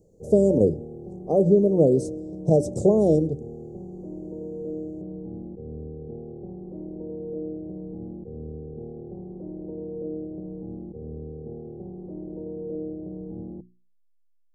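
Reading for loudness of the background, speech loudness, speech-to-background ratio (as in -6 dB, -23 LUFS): -37.0 LUFS, -21.0 LUFS, 16.0 dB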